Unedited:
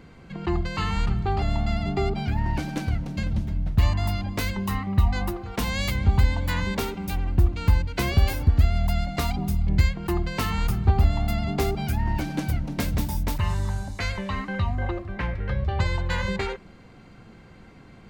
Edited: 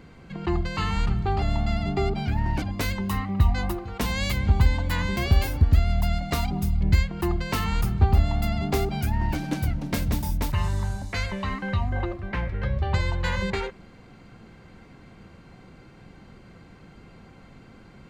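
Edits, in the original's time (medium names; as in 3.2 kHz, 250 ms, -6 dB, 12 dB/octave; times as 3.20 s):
2.62–4.20 s: delete
6.75–8.03 s: delete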